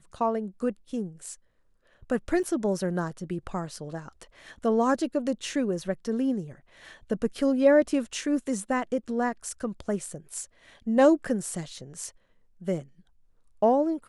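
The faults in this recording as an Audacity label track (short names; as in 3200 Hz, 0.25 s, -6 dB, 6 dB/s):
2.430000	2.440000	gap 6.7 ms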